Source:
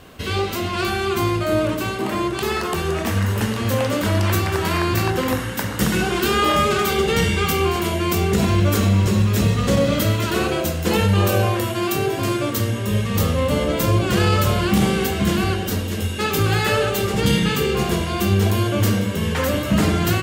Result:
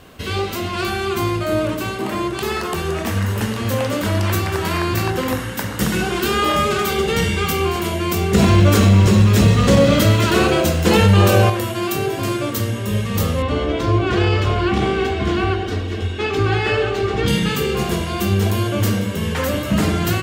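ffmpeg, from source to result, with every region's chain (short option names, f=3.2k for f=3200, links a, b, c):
-filter_complex "[0:a]asettb=1/sr,asplit=3[a][b][c];[a]atrim=end=8.344[d];[b]atrim=start=8.34:end=11.5,asetpts=PTS-STARTPTS,afade=t=in:d=0.004:c=qsin,afade=t=out:st=3.156:d=0.004:c=qsin,acrusher=bits=7:mix=0:aa=0.5,equalizer=f=14k:w=0.76:g=-6,acontrast=51[e];[c]atrim=start=11.496[f];[d][e]acrossfade=d=0.004:c1=hsin:c2=qsin[g];[g][f]acrossfade=d=0.004:c1=qsin:c2=hsin,asettb=1/sr,asplit=3[h][i][j];[h]atrim=end=13.424[k];[i]atrim=start=13.42:end=17.28,asetpts=PTS-STARTPTS,afade=t=in:d=0.004:c=qsin,afade=t=out:st=3.856:d=0.004:c=qsin,lowpass=3.7k,aecho=1:1:2.7:0.59,atrim=end_sample=170226[l];[j]atrim=start=17.276[m];[k][l]acrossfade=d=0.004:c1=hsin:c2=qsin[n];[n][m]acrossfade=d=0.004:c1=qsin:c2=hsin"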